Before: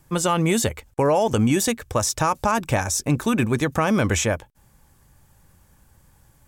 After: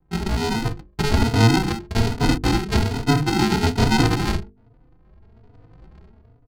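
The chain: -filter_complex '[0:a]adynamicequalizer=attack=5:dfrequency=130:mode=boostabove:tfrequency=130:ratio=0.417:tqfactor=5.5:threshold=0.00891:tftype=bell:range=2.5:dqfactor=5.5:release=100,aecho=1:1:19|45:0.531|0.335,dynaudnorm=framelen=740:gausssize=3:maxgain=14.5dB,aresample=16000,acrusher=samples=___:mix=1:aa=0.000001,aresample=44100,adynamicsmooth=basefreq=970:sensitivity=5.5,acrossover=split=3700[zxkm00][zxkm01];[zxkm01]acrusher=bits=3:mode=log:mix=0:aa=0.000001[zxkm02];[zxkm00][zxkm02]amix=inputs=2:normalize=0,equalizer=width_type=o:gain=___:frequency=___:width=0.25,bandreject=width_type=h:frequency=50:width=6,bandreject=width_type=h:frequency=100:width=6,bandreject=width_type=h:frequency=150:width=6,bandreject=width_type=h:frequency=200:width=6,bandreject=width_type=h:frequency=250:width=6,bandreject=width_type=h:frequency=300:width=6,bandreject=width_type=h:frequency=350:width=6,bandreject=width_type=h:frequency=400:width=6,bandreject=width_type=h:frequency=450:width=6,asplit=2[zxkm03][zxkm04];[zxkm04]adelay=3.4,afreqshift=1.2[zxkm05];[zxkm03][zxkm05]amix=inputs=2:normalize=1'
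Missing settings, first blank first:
28, 7, 4500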